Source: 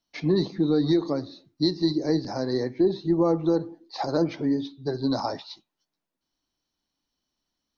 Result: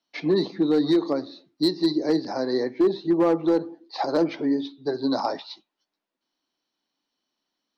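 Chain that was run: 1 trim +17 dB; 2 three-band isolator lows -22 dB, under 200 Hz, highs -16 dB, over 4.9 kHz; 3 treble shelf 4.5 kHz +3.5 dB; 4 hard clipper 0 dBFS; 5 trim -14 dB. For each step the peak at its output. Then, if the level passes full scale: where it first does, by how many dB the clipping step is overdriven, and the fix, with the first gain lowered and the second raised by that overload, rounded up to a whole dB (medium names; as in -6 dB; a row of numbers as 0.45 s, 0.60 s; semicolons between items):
+5.5 dBFS, +3.5 dBFS, +3.5 dBFS, 0.0 dBFS, -14.0 dBFS; step 1, 3.5 dB; step 1 +13 dB, step 5 -10 dB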